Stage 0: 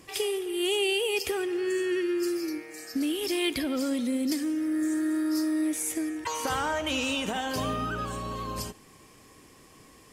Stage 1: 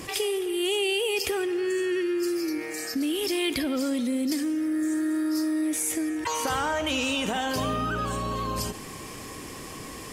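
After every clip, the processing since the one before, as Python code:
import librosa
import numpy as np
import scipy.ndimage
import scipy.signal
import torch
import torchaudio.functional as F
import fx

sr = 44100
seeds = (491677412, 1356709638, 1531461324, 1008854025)

y = fx.env_flatten(x, sr, amount_pct=50)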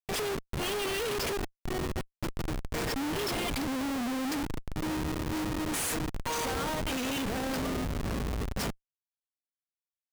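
y = fx.high_shelf(x, sr, hz=2500.0, db=9.5)
y = y + 0.77 * np.pad(y, (int(4.3 * sr / 1000.0), 0))[:len(y)]
y = fx.schmitt(y, sr, flips_db=-21.0)
y = F.gain(torch.from_numpy(y), -7.0).numpy()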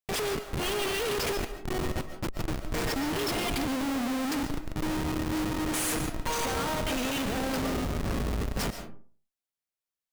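y = fx.rev_freeverb(x, sr, rt60_s=0.43, hf_ratio=0.5, predelay_ms=95, drr_db=8.0)
y = F.gain(torch.from_numpy(y), 1.5).numpy()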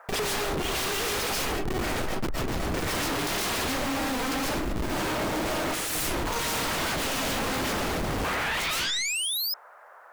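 y = fx.dmg_noise_band(x, sr, seeds[0], low_hz=520.0, high_hz=1600.0, level_db=-68.0)
y = fx.spec_paint(y, sr, seeds[1], shape='rise', start_s=8.24, length_s=1.3, low_hz=540.0, high_hz=5200.0, level_db=-36.0)
y = fx.fold_sine(y, sr, drive_db=18, ceiling_db=-20.5)
y = F.gain(torch.from_numpy(y), -4.5).numpy()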